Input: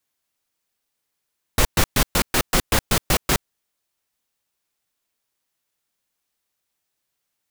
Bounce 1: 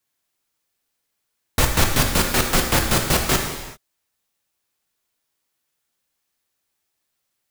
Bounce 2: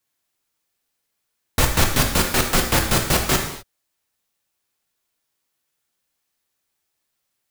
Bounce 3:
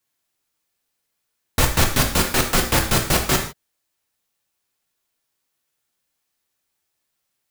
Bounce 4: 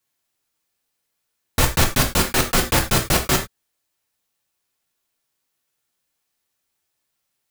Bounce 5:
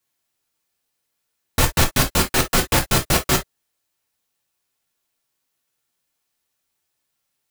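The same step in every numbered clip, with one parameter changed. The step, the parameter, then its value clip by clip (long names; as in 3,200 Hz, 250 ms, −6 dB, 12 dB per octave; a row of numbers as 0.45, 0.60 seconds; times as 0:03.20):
reverb whose tail is shaped and stops, gate: 420, 280, 180, 120, 80 milliseconds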